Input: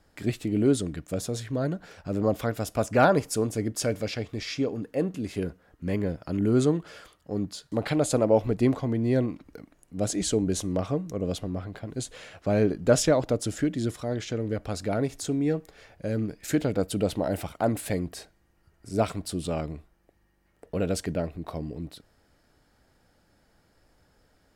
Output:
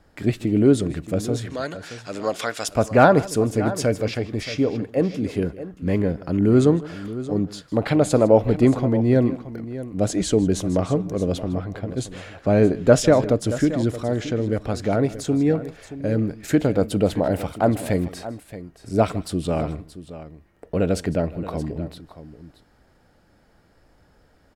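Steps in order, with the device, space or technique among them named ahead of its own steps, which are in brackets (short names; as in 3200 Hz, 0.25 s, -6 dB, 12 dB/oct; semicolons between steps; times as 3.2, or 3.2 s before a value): 1.5–2.68 weighting filter ITU-R 468; behind a face mask (high shelf 3400 Hz -7.5 dB); tapped delay 0.155/0.625 s -19.5/-14 dB; gain +6.5 dB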